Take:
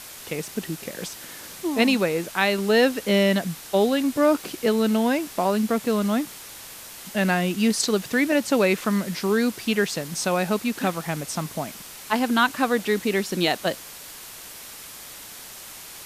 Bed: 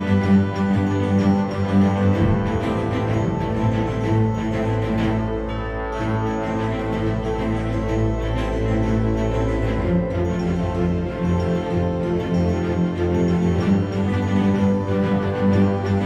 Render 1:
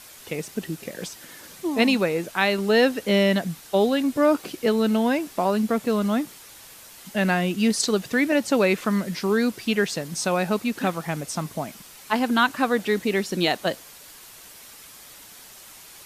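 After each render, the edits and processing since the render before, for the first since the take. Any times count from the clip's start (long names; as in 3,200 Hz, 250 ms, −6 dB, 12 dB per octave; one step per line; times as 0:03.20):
broadband denoise 6 dB, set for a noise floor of −41 dBFS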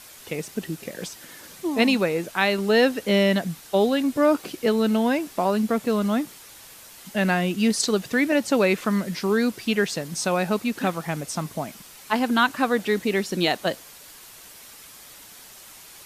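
no processing that can be heard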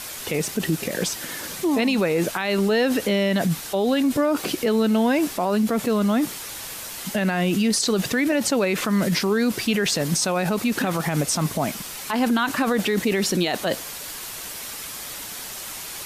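in parallel at +1.5 dB: compressor whose output falls as the input rises −30 dBFS, ratio −1
on the sum: brickwall limiter −12.5 dBFS, peak gain reduction 9 dB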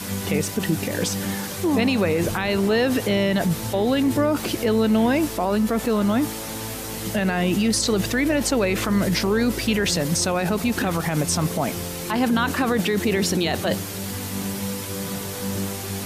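mix in bed −11 dB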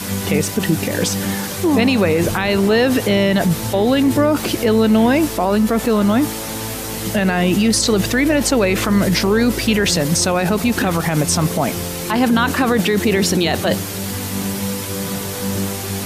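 level +5.5 dB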